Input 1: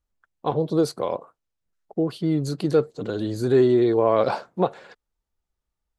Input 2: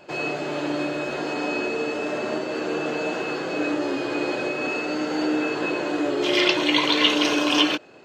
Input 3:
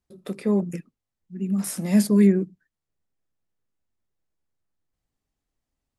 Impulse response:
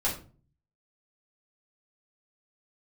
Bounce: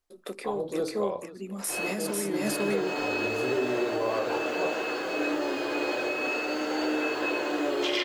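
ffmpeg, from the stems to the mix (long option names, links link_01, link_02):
-filter_complex "[0:a]volume=-8.5dB,asplit=3[link_01][link_02][link_03];[link_02]volume=-11.5dB[link_04];[link_03]volume=-16.5dB[link_05];[1:a]acrusher=bits=7:mix=0:aa=0.5,adelay=1600,volume=-2.5dB,asplit=2[link_06][link_07];[link_07]volume=-22.5dB[link_08];[2:a]highpass=260,volume=2dB,asplit=3[link_09][link_10][link_11];[link_10]volume=-4dB[link_12];[link_11]apad=whole_len=425314[link_13];[link_06][link_13]sidechaincompress=threshold=-32dB:ratio=8:attack=36:release=133[link_14];[link_01][link_09]amix=inputs=2:normalize=0,alimiter=limit=-21dB:level=0:latency=1:release=183,volume=0dB[link_15];[3:a]atrim=start_sample=2205[link_16];[link_04][link_08]amix=inputs=2:normalize=0[link_17];[link_17][link_16]afir=irnorm=-1:irlink=0[link_18];[link_05][link_12]amix=inputs=2:normalize=0,aecho=0:1:495:1[link_19];[link_14][link_15][link_18][link_19]amix=inputs=4:normalize=0,equalizer=frequency=160:width_type=o:width=1.1:gain=-12.5,alimiter=limit=-17dB:level=0:latency=1:release=248"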